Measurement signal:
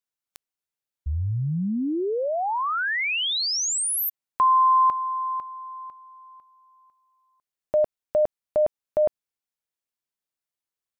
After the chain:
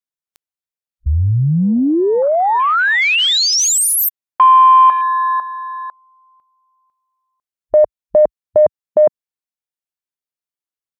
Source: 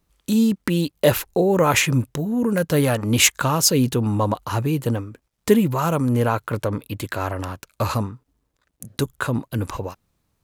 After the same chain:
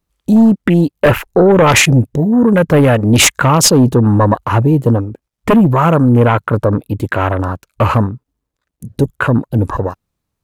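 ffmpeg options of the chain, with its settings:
ffmpeg -i in.wav -af "aeval=exprs='0.891*sin(PI/2*3.55*val(0)/0.891)':channel_layout=same,afwtdn=0.126,volume=-3dB" out.wav

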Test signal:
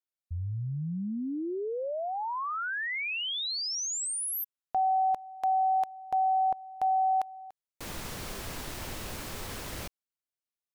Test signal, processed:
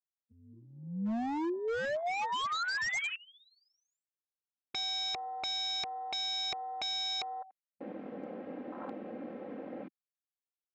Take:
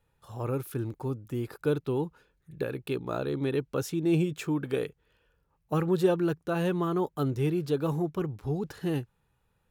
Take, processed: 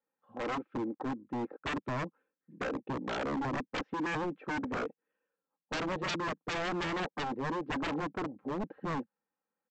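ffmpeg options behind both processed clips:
ffmpeg -i in.wav -af "lowpass=frequency=2200:width=0.5412,lowpass=frequency=2200:width=1.3066,afwtdn=0.0126,highpass=frequency=210:width=0.5412,highpass=frequency=210:width=1.3066,aecho=1:1:3.8:0.61,aresample=16000,aeval=exprs='0.0266*(abs(mod(val(0)/0.0266+3,4)-2)-1)':channel_layout=same,aresample=44100,volume=2.5dB" out.wav

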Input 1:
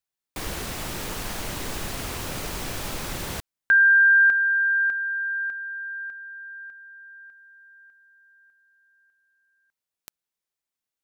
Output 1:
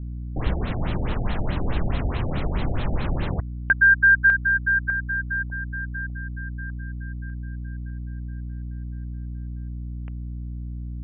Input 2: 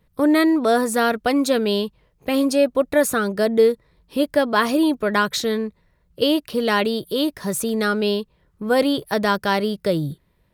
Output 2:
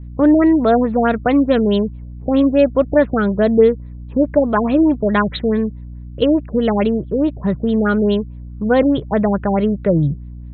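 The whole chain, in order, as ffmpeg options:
ffmpeg -i in.wav -af "equalizer=frequency=640:width_type=o:width=0.77:gain=2,aeval=exprs='val(0)+0.00891*(sin(2*PI*60*n/s)+sin(2*PI*2*60*n/s)/2+sin(2*PI*3*60*n/s)/3+sin(2*PI*4*60*n/s)/4+sin(2*PI*5*60*n/s)/5)':channel_layout=same,bass=frequency=250:gain=9,treble=frequency=4000:gain=-2,afftfilt=real='re*lt(b*sr/1024,780*pow(4300/780,0.5+0.5*sin(2*PI*4.7*pts/sr)))':imag='im*lt(b*sr/1024,780*pow(4300/780,0.5+0.5*sin(2*PI*4.7*pts/sr)))':win_size=1024:overlap=0.75,volume=2dB" out.wav

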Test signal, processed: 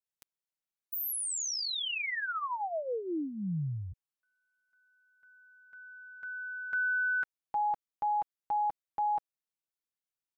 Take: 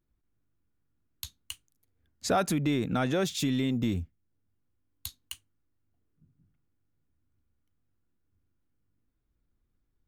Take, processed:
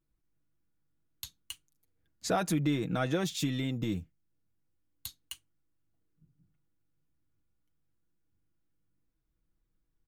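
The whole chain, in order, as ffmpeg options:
ffmpeg -i in.wav -af "aecho=1:1:6.2:0.5,volume=-3.5dB" out.wav

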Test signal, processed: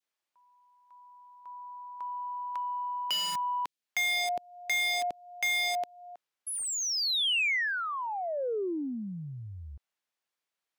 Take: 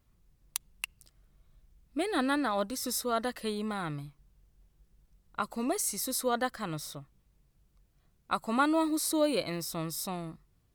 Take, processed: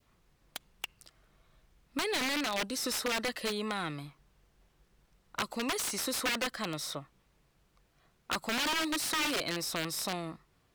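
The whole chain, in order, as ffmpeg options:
ffmpeg -i in.wav -filter_complex "[0:a]adynamicequalizer=threshold=0.00708:dfrequency=1300:dqfactor=1.1:tfrequency=1300:tqfactor=1.1:attack=5:release=100:ratio=0.375:range=3.5:mode=cutabove:tftype=bell,aeval=exprs='(mod(17.8*val(0)+1,2)-1)/17.8':channel_layout=same,acrossover=split=420|2100[link_01][link_02][link_03];[link_01]acompressor=threshold=-39dB:ratio=4[link_04];[link_02]acompressor=threshold=-46dB:ratio=4[link_05];[link_03]acompressor=threshold=-31dB:ratio=4[link_06];[link_04][link_05][link_06]amix=inputs=3:normalize=0,asplit=2[link_07][link_08];[link_08]highpass=frequency=720:poles=1,volume=17dB,asoftclip=type=tanh:threshold=-16.5dB[link_09];[link_07][link_09]amix=inputs=2:normalize=0,lowpass=frequency=2800:poles=1,volume=-6dB" out.wav

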